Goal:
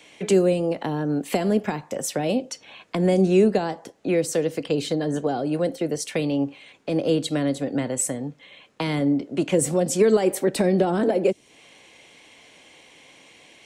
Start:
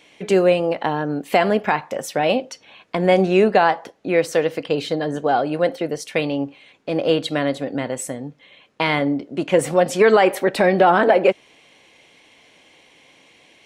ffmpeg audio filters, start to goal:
-filter_complex "[0:a]equalizer=f=8000:w=1.6:g=5.5,acrossover=split=250|410|4800[s0][s1][s2][s3];[s2]acompressor=threshold=0.0251:ratio=6[s4];[s0][s1][s4][s3]amix=inputs=4:normalize=0,volume=1.12"

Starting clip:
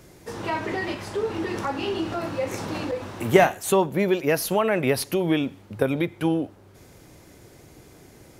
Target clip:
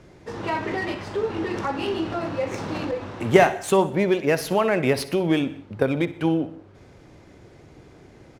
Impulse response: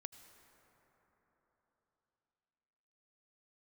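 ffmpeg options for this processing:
-filter_complex "[0:a]adynamicsmooth=sensitivity=6.5:basefreq=4300,aecho=1:1:62|124|186|248:0.15|0.0613|0.0252|0.0103,asplit=2[s0][s1];[1:a]atrim=start_sample=2205,afade=t=out:st=0.26:d=0.01,atrim=end_sample=11907[s2];[s1][s2]afir=irnorm=-1:irlink=0,volume=1.5[s3];[s0][s3]amix=inputs=2:normalize=0,volume=0.631"

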